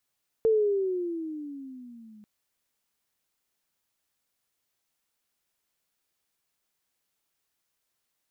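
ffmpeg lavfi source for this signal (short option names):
-f lavfi -i "aevalsrc='pow(10,(-18-30*t/1.79)/20)*sin(2*PI*452*1.79/(-13.5*log(2)/12)*(exp(-13.5*log(2)/12*t/1.79)-1))':d=1.79:s=44100"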